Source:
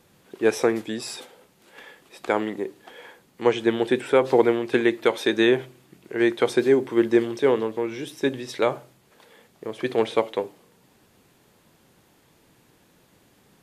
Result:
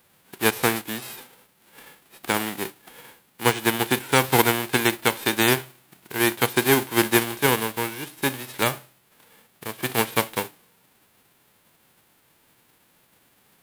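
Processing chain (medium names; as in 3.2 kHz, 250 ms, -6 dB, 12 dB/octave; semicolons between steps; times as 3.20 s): formants flattened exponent 0.3; peaking EQ 6.1 kHz -8 dB 1.2 oct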